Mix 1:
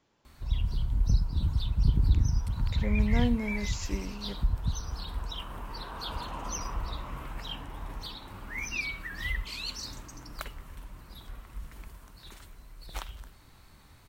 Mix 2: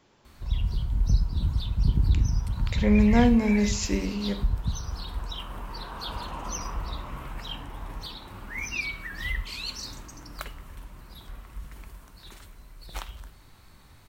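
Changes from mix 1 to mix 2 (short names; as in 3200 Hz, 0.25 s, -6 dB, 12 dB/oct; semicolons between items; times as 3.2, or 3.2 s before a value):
speech +6.0 dB; reverb: on, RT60 0.60 s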